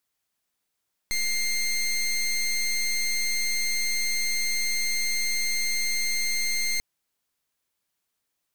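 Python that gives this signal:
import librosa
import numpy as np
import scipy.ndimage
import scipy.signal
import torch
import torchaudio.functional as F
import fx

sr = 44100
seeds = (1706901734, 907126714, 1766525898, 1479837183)

y = fx.pulse(sr, length_s=5.69, hz=2110.0, level_db=-25.5, duty_pct=18)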